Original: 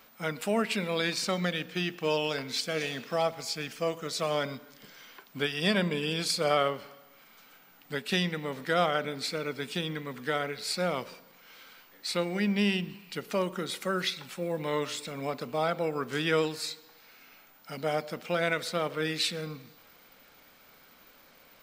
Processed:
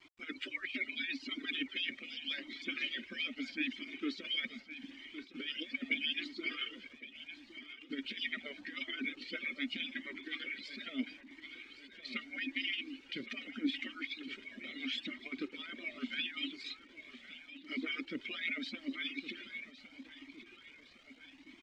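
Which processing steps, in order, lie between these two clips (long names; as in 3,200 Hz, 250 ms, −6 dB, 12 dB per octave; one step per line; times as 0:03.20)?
harmonic-percussive split with one part muted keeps percussive
low-shelf EQ 65 Hz −7.5 dB
comb filter 3.2 ms, depth 33%
compressor whose output falls as the input rises −36 dBFS, ratio −0.5
formant filter i
bit-depth reduction 12 bits, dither none
high-frequency loss of the air 140 metres
repeating echo 1,112 ms, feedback 53%, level −13.5 dB
flanger whose copies keep moving one way rising 0.79 Hz
level +17.5 dB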